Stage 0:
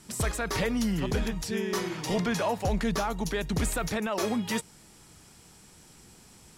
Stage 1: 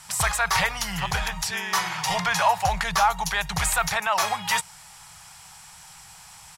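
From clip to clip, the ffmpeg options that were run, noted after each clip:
ffmpeg -i in.wav -af "firequalizer=gain_entry='entry(170,0);entry(240,-24);entry(790,13);entry(1300,11);entry(3800,9)':delay=0.05:min_phase=1" out.wav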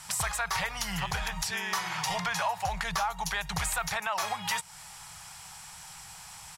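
ffmpeg -i in.wav -af "acompressor=threshold=-30dB:ratio=3" out.wav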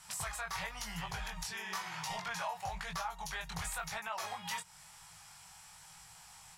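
ffmpeg -i in.wav -af "flanger=delay=18:depth=5.4:speed=0.99,volume=-6dB" out.wav

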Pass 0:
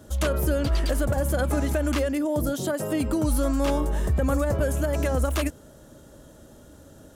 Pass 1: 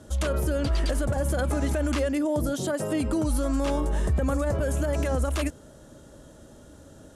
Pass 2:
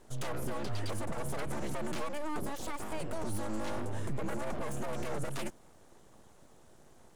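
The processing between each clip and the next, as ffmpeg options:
ffmpeg -i in.wav -af "lowpass=frequency=11000:width=0.5412,lowpass=frequency=11000:width=1.3066,alimiter=limit=-17dB:level=0:latency=1:release=48" out.wav
ffmpeg -i in.wav -af "aeval=exprs='abs(val(0))':channel_layout=same,volume=-8dB" out.wav

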